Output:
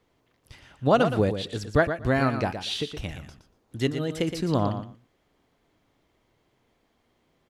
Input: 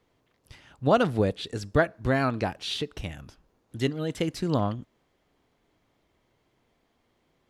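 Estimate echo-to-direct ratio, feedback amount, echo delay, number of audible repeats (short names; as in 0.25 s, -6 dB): -9.0 dB, 16%, 0.118 s, 2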